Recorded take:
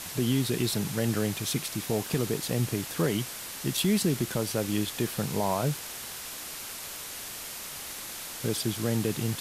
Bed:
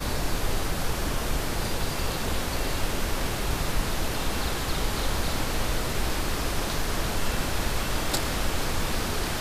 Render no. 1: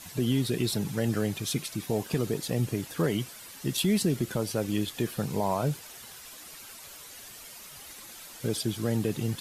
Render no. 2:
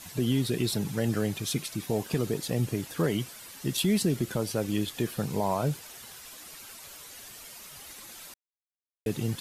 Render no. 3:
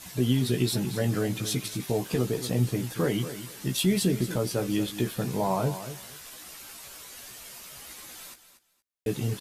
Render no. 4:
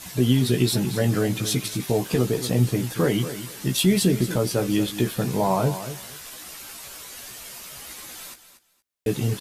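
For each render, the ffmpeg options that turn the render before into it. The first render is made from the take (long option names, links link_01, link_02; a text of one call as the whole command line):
ffmpeg -i in.wav -af "afftdn=noise_reduction=10:noise_floor=-40" out.wav
ffmpeg -i in.wav -filter_complex "[0:a]asplit=3[link_01][link_02][link_03];[link_01]atrim=end=8.34,asetpts=PTS-STARTPTS,afade=type=out:start_time=8.336:duration=0.004:curve=hsin[link_04];[link_02]atrim=start=8.34:end=9.06,asetpts=PTS-STARTPTS,volume=0[link_05];[link_03]atrim=start=9.06,asetpts=PTS-STARTPTS,afade=type=in:duration=0.004:curve=hsin[link_06];[link_04][link_05][link_06]concat=n=3:v=0:a=1" out.wav
ffmpeg -i in.wav -filter_complex "[0:a]asplit=2[link_01][link_02];[link_02]adelay=16,volume=-5dB[link_03];[link_01][link_03]amix=inputs=2:normalize=0,aecho=1:1:234|468:0.251|0.0477" out.wav
ffmpeg -i in.wav -af "volume=5dB" out.wav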